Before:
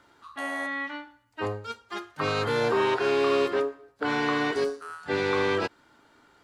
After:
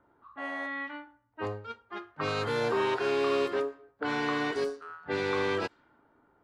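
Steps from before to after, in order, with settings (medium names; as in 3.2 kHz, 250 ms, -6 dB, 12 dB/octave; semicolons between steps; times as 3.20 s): level-controlled noise filter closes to 1 kHz, open at -22.5 dBFS; trim -4 dB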